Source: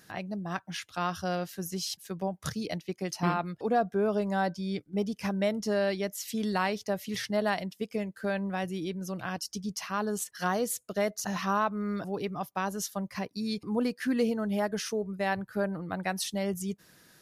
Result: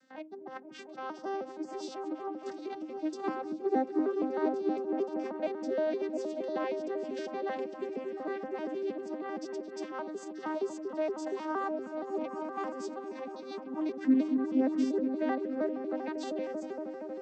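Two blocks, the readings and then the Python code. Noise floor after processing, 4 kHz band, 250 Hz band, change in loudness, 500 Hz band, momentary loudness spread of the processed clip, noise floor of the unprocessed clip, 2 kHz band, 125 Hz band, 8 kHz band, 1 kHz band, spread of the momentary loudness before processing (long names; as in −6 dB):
−46 dBFS, −13.5 dB, −1.0 dB, −2.5 dB, −1.5 dB, 11 LU, −63 dBFS, −9.5 dB, below −20 dB, −17.5 dB, −5.0 dB, 7 LU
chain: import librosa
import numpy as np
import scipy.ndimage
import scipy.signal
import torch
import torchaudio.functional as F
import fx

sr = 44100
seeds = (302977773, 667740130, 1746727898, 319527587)

p1 = fx.vocoder_arp(x, sr, chord='minor triad', root=60, every_ms=156)
p2 = fx.notch(p1, sr, hz=1900.0, q=21.0)
p3 = p2 + fx.echo_opening(p2, sr, ms=235, hz=200, octaves=1, feedback_pct=70, wet_db=0, dry=0)
y = p3 * librosa.db_to_amplitude(-3.5)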